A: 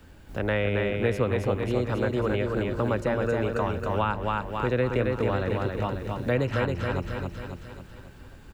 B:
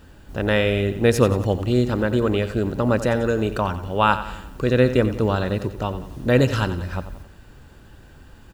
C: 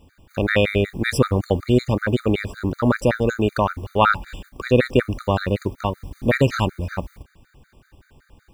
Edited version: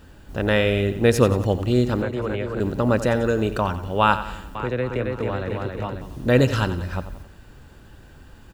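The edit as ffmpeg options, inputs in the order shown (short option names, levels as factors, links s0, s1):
-filter_complex "[0:a]asplit=2[s0][s1];[1:a]asplit=3[s2][s3][s4];[s2]atrim=end=2.022[s5];[s0]atrim=start=2.018:end=2.602[s6];[s3]atrim=start=2.598:end=4.552[s7];[s1]atrim=start=4.548:end=6.012[s8];[s4]atrim=start=6.008[s9];[s5][s6]acrossfade=d=0.004:c1=hsin:c2=hsin[s10];[s10][s7]acrossfade=d=0.004:c1=hsin:c2=hsin[s11];[s11][s8]acrossfade=d=0.004:c1=hsin:c2=hsin[s12];[s12][s9]acrossfade=d=0.004:c1=hsin:c2=hsin"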